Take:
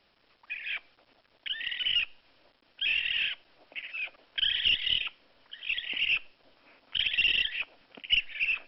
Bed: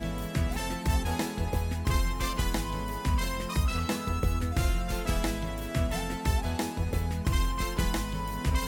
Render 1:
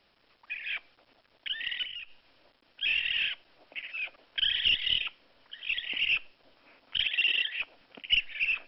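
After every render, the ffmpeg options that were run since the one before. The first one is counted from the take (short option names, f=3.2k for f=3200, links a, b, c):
-filter_complex "[0:a]asettb=1/sr,asplit=3[a][b][c];[a]atrim=end=1.834[d];[b]atrim=start=1.83:end=2.83,asetpts=PTS-STARTPTS,afade=t=in:d=0.004:c=qsin,afade=t=out:st=0.996:d=0.004:c=qsin,acompressor=threshold=-39dB:ratio=6:attack=3.2:release=140:knee=1:detection=peak[e];[c]atrim=start=2.826[f];[d][e]acrossfade=d=0.004:c1=hsin:c2=qsin[g];[g][f]acrossfade=d=0.004:c1=qsin:c2=hsin,asettb=1/sr,asplit=3[h][i][j];[h]atrim=end=7.064[k];[i]atrim=start=7.06:end=7.59,asetpts=PTS-STARTPTS,afade=t=in:d=0.004:c=qsin,afade=t=out:st=0.526:d=0.004:c=qsin,highpass=310,lowpass=3.8k[l];[j]atrim=start=7.586[m];[k][l]acrossfade=d=0.004:c1=hsin:c2=qsin[n];[n][m]acrossfade=d=0.004:c1=qsin:c2=hsin"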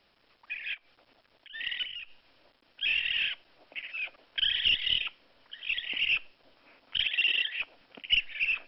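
-filter_complex "[0:a]asplit=3[a][b][c];[a]afade=t=out:st=0.73:d=0.02[d];[b]acompressor=threshold=-54dB:ratio=3:attack=3.2:release=140:knee=1:detection=peak,afade=t=in:st=0.73:d=0.02,afade=t=out:st=1.53:d=0.02[e];[c]afade=t=in:st=1.53:d=0.02[f];[d][e][f]amix=inputs=3:normalize=0"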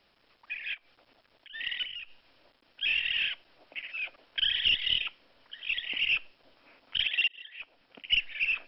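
-filter_complex "[0:a]asplit=2[a][b];[a]atrim=end=7.28,asetpts=PTS-STARTPTS,afade=t=out:st=7.276:d=0.004:c=hsin[c];[b]atrim=start=7.28,asetpts=PTS-STARTPTS,afade=t=in:d=0.94[d];[c][d]concat=n=2:v=0:a=1"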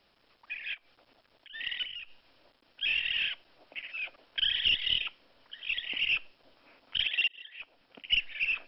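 -af "equalizer=f=2.1k:w=1.5:g=-2"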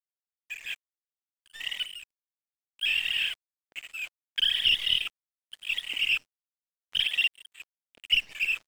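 -af "crystalizer=i=2.5:c=0,aeval=exprs='sgn(val(0))*max(abs(val(0))-0.00708,0)':c=same"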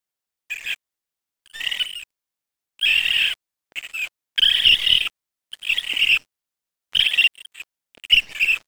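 -af "volume=9dB"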